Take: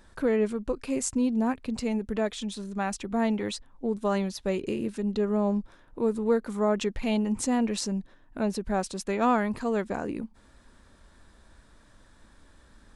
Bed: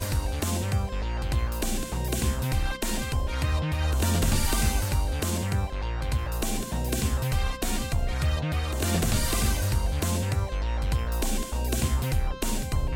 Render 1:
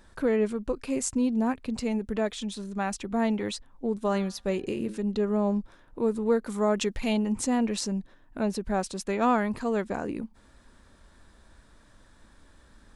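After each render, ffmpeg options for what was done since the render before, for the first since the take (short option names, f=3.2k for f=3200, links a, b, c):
-filter_complex "[0:a]asettb=1/sr,asplit=3[a][b][c];[a]atrim=end=4.064[d];[b]atrim=start=4.06:end=4.97,asetpts=PTS-STARTPTS,afade=t=in:d=0.004:c=qsin,afade=t=out:st=0.906:d=0.004:c=qsin,bandreject=f=108.1:t=h:w=4,bandreject=f=216.2:t=h:w=4,bandreject=f=324.3:t=h:w=4,bandreject=f=432.4:t=h:w=4,bandreject=f=540.5:t=h:w=4,bandreject=f=648.6:t=h:w=4,bandreject=f=756.7:t=h:w=4,bandreject=f=864.8:t=h:w=4,bandreject=f=972.9:t=h:w=4,bandreject=f=1.081k:t=h:w=4,bandreject=f=1.1891k:t=h:w=4,bandreject=f=1.2972k:t=h:w=4,bandreject=f=1.4053k:t=h:w=4,bandreject=f=1.5134k:t=h:w=4,bandreject=f=1.6215k:t=h:w=4,bandreject=f=1.7296k:t=h:w=4,bandreject=f=1.8377k:t=h:w=4[e];[c]atrim=start=4.966[f];[d][e]acrossfade=d=0.004:c1=hsin:c2=qsin[g];[g][f]acrossfade=d=0.004:c1=qsin:c2=hsin,asettb=1/sr,asplit=3[h][i][j];[h]atrim=end=6.464[k];[i]atrim=start=6.46:end=7.13,asetpts=PTS-STARTPTS,afade=t=in:d=0.004:c=qsin,afade=t=out:st=0.666:d=0.004:c=qsin,highshelf=f=3.6k:g=6.5[l];[j]atrim=start=7.126[m];[k][l]acrossfade=d=0.004:c1=hsin:c2=qsin[n];[n][m]acrossfade=d=0.004:c1=qsin:c2=hsin"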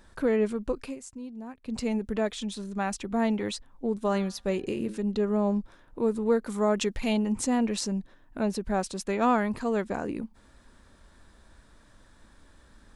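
-filter_complex "[0:a]asplit=3[a][b][c];[a]atrim=end=0.96,asetpts=PTS-STARTPTS,afade=t=out:st=0.83:d=0.13:silence=0.188365[d];[b]atrim=start=0.96:end=1.62,asetpts=PTS-STARTPTS,volume=-14.5dB[e];[c]atrim=start=1.62,asetpts=PTS-STARTPTS,afade=t=in:d=0.13:silence=0.188365[f];[d][e][f]concat=n=3:v=0:a=1"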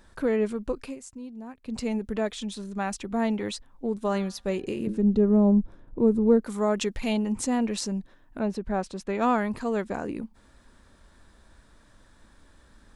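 -filter_complex "[0:a]asettb=1/sr,asplit=3[a][b][c];[a]atrim=end=4.874[d];[b]atrim=start=4.87:end=6.41,asetpts=PTS-STARTPTS,afade=t=in:d=0.004:c=qsin,afade=t=out:st=1.536:d=0.004:c=qsin,tiltshelf=f=680:g=9.5[e];[c]atrim=start=6.406[f];[d][e]acrossfade=d=0.004:c1=hsin:c2=qsin[g];[g][f]acrossfade=d=0.004:c1=qsin:c2=hsin,asettb=1/sr,asplit=3[h][i][j];[h]atrim=end=8.394[k];[i]atrim=start=8.39:end=9.15,asetpts=PTS-STARTPTS,afade=t=in:d=0.004:c=qsin,afade=t=out:st=0.756:d=0.004:c=qsin,lowpass=f=2.6k:p=1[l];[j]atrim=start=9.146[m];[k][l]acrossfade=d=0.004:c1=hsin:c2=qsin[n];[n][m]acrossfade=d=0.004:c1=qsin:c2=hsin"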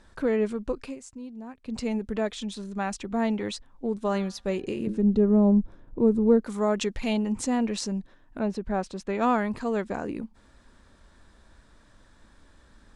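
-af "lowpass=8.9k"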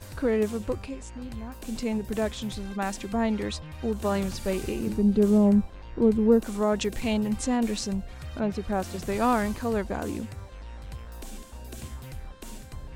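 -filter_complex "[1:a]volume=-13.5dB[a];[0:a][a]amix=inputs=2:normalize=0"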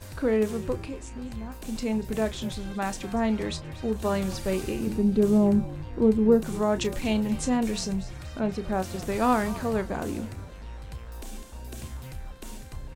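-filter_complex "[0:a]asplit=2[a][b];[b]adelay=32,volume=-12.5dB[c];[a][c]amix=inputs=2:normalize=0,asplit=5[d][e][f][g][h];[e]adelay=238,afreqshift=-57,volume=-17dB[i];[f]adelay=476,afreqshift=-114,volume=-23dB[j];[g]adelay=714,afreqshift=-171,volume=-29dB[k];[h]adelay=952,afreqshift=-228,volume=-35.1dB[l];[d][i][j][k][l]amix=inputs=5:normalize=0"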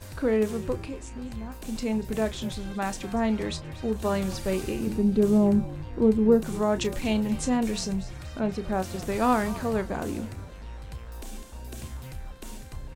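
-af anull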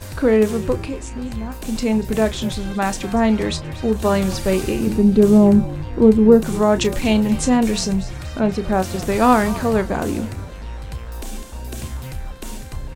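-af "volume=9dB,alimiter=limit=-1dB:level=0:latency=1"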